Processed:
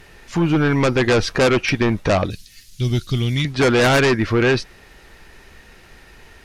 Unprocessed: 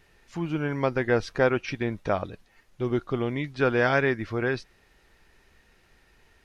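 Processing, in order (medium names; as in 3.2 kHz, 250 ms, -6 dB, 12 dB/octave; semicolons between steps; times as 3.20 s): 2.30–3.45 s: FFT filter 130 Hz 0 dB, 850 Hz -25 dB, 4.4 kHz +11 dB; in parallel at -10 dB: sine folder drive 14 dB, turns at -10 dBFS; on the sum: trim +4 dB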